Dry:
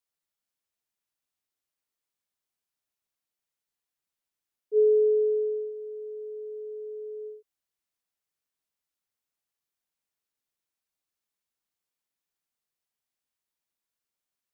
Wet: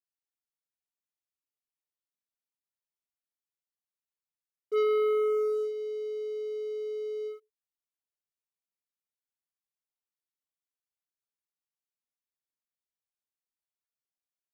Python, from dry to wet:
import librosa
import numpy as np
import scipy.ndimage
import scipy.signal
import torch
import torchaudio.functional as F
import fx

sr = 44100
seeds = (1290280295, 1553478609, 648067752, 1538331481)

y = fx.bandpass_q(x, sr, hz=330.0, q=0.54, at=(4.82, 5.58), fade=0.02)
y = fx.room_early_taps(y, sr, ms=(65, 76), db=(-15.0, -16.0))
y = fx.leveller(y, sr, passes=3)
y = F.gain(torch.from_numpy(y), -7.0).numpy()